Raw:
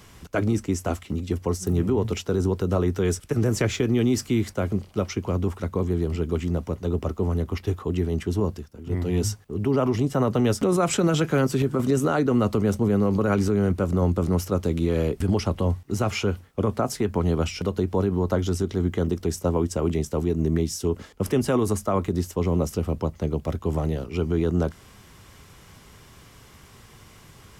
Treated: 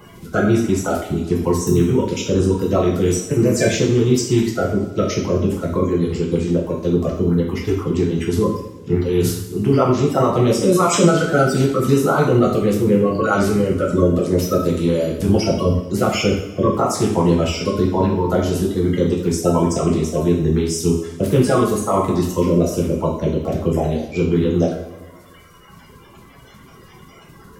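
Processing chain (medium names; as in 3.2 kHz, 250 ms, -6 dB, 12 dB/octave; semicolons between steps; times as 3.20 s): coarse spectral quantiser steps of 30 dB; reverb removal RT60 2 s; two-slope reverb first 0.64 s, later 2.1 s, from -17 dB, DRR -3 dB; trim +4 dB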